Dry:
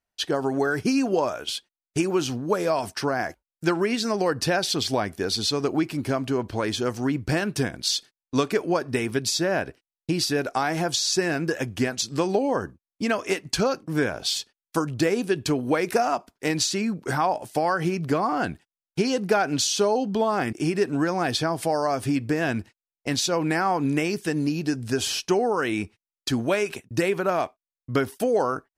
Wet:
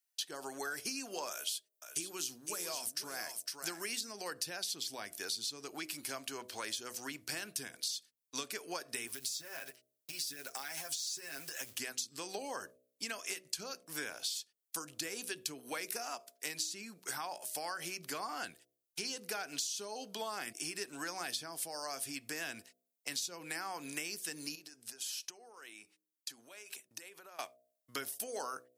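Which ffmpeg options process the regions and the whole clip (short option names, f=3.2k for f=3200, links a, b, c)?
-filter_complex "[0:a]asettb=1/sr,asplit=3[a][b][c];[a]atrim=end=1.314[d];[b]atrim=start=1.31:end=4.01,asetpts=PTS-STARTPTS,afade=t=in:d=0.004:c=qsin,afade=t=out:st=2.696:d=0.004:c=qsin,highshelf=f=4.8k:g=8.5,aecho=1:1:508:0.335,atrim=end_sample=119070[e];[c]atrim=start=4.006[f];[d][e]acrossfade=d=0.004:c1=hsin:c2=qsin[g];[g][f]acrossfade=d=0.004:c1=qsin:c2=hsin,asettb=1/sr,asplit=3[h][i][j];[h]atrim=end=9.074[k];[i]atrim=start=9.07:end=11.78,asetpts=PTS-STARTPTS,afade=t=in:d=0.004:c=qsin,afade=t=out:st=2.706:d=0.004:c=qsin,acompressor=threshold=-29dB:ratio=12:attack=3.2:release=140:knee=1:detection=peak,aecho=1:1:7.5:0.8,atrim=end_sample=119511,acrusher=bits=6:mode=log:mix=0:aa=0.000001[l];[j]atrim=start=11.776[m];[k][l]acrossfade=d=0.004:c1=hsin:c2=qsin[n];[n][m]acrossfade=d=0.004:c1=qsin:c2=hsin,asettb=1/sr,asplit=3[o][p][q];[o]atrim=end=24.554[r];[p]atrim=start=24.55:end=27.39,asetpts=PTS-STARTPTS,afade=t=in:d=0.004:c=qsin,afade=t=out:st=2.836:d=0.004:c=qsin,highpass=f=290:p=1,tiltshelf=f=770:g=4,acompressor=threshold=-36dB:ratio=12:attack=3.2:release=140:knee=1:detection=peak[s];[q]atrim=start=27.386[t];[r][s]acrossfade=d=0.004:c1=hsin:c2=qsin[u];[u][t]acrossfade=d=0.004:c1=qsin:c2=hsin,aderivative,bandreject=f=62.52:t=h:w=4,bandreject=f=125.04:t=h:w=4,bandreject=f=187.56:t=h:w=4,bandreject=f=250.08:t=h:w=4,bandreject=f=312.6:t=h:w=4,bandreject=f=375.12:t=h:w=4,bandreject=f=437.64:t=h:w=4,bandreject=f=500.16:t=h:w=4,bandreject=f=562.68:t=h:w=4,bandreject=f=625.2:t=h:w=4,bandreject=f=687.72:t=h:w=4,acrossover=split=370[v][w];[w]acompressor=threshold=-42dB:ratio=6[x];[v][x]amix=inputs=2:normalize=0,volume=5dB"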